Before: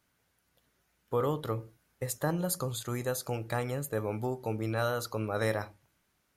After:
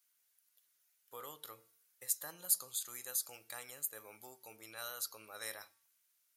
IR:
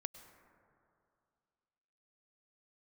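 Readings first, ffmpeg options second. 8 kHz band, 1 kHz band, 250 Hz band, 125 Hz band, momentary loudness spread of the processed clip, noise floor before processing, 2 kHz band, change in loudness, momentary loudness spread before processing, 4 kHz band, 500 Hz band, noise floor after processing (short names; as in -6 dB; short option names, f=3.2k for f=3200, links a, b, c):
+2.0 dB, -16.0 dB, -27.5 dB, -34.0 dB, 20 LU, -75 dBFS, -11.5 dB, -6.0 dB, 6 LU, -4.0 dB, -22.0 dB, -77 dBFS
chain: -af "aderivative,bandreject=f=227.1:t=h:w=4,bandreject=f=454.2:t=h:w=4,bandreject=f=681.3:t=h:w=4,bandreject=f=908.4:t=h:w=4,bandreject=f=1.1355k:t=h:w=4,bandreject=f=1.3626k:t=h:w=4,bandreject=f=1.5897k:t=h:w=4,bandreject=f=1.8168k:t=h:w=4,bandreject=f=2.0439k:t=h:w=4,bandreject=f=2.271k:t=h:w=4,bandreject=f=2.4981k:t=h:w=4,bandreject=f=2.7252k:t=h:w=4,bandreject=f=2.9523k:t=h:w=4,bandreject=f=3.1794k:t=h:w=4,bandreject=f=3.4065k:t=h:w=4,bandreject=f=3.6336k:t=h:w=4,bandreject=f=3.8607k:t=h:w=4,bandreject=f=4.0878k:t=h:w=4,bandreject=f=4.3149k:t=h:w=4,bandreject=f=4.542k:t=h:w=4,bandreject=f=4.7691k:t=h:w=4,bandreject=f=4.9962k:t=h:w=4,bandreject=f=5.2233k:t=h:w=4,bandreject=f=5.4504k:t=h:w=4,bandreject=f=5.6775k:t=h:w=4,volume=1dB"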